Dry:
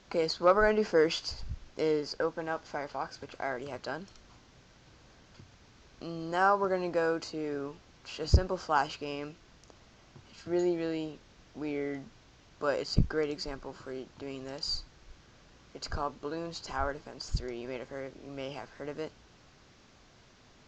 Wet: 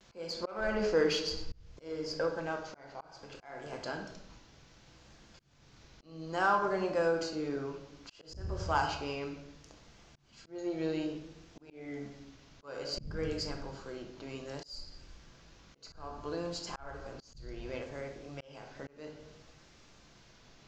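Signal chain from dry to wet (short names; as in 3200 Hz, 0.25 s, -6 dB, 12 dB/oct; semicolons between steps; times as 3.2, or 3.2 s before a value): high shelf 3000 Hz +4.5 dB; shoebox room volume 260 m³, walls mixed, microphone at 0.75 m; in parallel at -7 dB: soft clip -23.5 dBFS, distortion -10 dB; on the sum: auto swell 0.392 s; vibrato 0.62 Hz 48 cents; gain -6.5 dB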